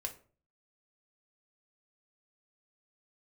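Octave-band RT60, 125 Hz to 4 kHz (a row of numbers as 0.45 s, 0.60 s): 0.60 s, 0.50 s, 0.45 s, 0.40 s, 0.35 s, 0.25 s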